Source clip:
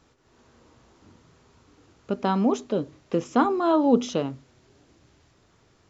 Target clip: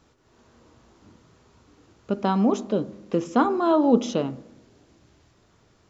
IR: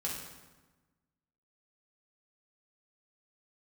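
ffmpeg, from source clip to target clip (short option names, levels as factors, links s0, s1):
-filter_complex "[0:a]asplit=2[s0][s1];[s1]lowpass=f=2300:w=0.5412,lowpass=f=2300:w=1.3066[s2];[1:a]atrim=start_sample=2205,asetrate=57330,aresample=44100[s3];[s2][s3]afir=irnorm=-1:irlink=0,volume=0.237[s4];[s0][s4]amix=inputs=2:normalize=0"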